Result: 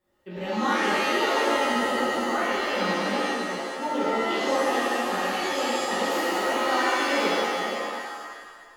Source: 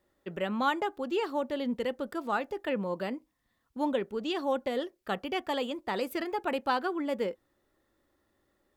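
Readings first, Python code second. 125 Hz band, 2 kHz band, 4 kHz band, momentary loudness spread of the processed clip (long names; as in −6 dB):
+4.5 dB, +12.5 dB, +11.5 dB, 8 LU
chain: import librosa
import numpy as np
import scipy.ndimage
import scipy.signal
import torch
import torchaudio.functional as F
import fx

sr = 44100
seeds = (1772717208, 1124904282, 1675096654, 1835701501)

y = fx.reverse_delay(x, sr, ms=323, wet_db=-4)
y = fx.rev_shimmer(y, sr, seeds[0], rt60_s=1.6, semitones=7, shimmer_db=-2, drr_db=-9.0)
y = y * librosa.db_to_amplitude(-6.5)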